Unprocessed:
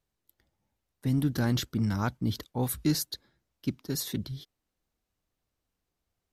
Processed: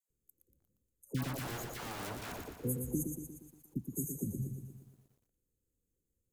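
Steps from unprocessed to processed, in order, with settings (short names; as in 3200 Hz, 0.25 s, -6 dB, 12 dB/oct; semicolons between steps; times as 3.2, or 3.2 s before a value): FFT band-reject 550–6200 Hz; compressor 16:1, threshold -32 dBFS, peak gain reduction 12 dB; 1.14–2.4 wrapped overs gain 37 dB; 3.1–4.07 fixed phaser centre 1600 Hz, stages 4; dispersion lows, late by 97 ms, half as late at 930 Hz; on a send: thinning echo 87 ms, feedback 65%, high-pass 500 Hz, level -21.5 dB; on the sum: lo-fi delay 0.118 s, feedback 55%, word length 12-bit, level -5.5 dB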